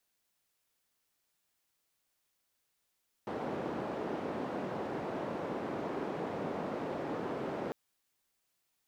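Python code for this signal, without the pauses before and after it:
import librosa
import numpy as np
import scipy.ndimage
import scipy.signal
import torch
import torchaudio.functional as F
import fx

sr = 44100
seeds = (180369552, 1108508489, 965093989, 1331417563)

y = fx.band_noise(sr, seeds[0], length_s=4.45, low_hz=190.0, high_hz=570.0, level_db=-37.5)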